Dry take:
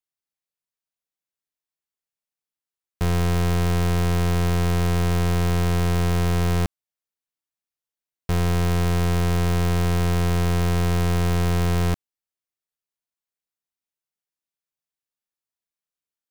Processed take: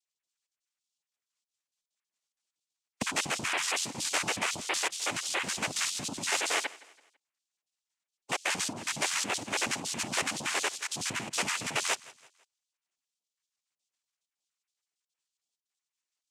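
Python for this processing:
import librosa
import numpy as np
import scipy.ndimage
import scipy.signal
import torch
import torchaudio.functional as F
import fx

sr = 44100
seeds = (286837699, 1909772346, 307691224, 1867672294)

p1 = fx.spec_dropout(x, sr, seeds[0], share_pct=80)
p2 = fx.over_compress(p1, sr, threshold_db=-28.0, ratio=-1.0)
p3 = fx.noise_vocoder(p2, sr, seeds[1], bands=4)
p4 = fx.tilt_eq(p3, sr, slope=3.0)
y = p4 + fx.echo_feedback(p4, sr, ms=166, feedback_pct=40, wet_db=-21, dry=0)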